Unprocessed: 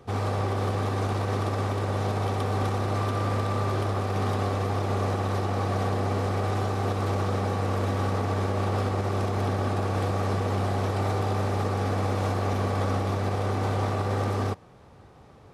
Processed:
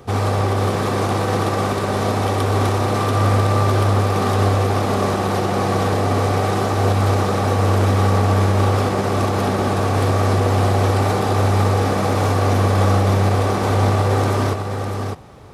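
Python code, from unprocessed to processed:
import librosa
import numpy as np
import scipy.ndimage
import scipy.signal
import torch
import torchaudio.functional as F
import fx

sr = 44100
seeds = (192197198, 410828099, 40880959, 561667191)

y = fx.high_shelf(x, sr, hz=7700.0, db=6.5)
y = y + 10.0 ** (-6.0 / 20.0) * np.pad(y, (int(605 * sr / 1000.0), 0))[:len(y)]
y = y * librosa.db_to_amplitude(8.5)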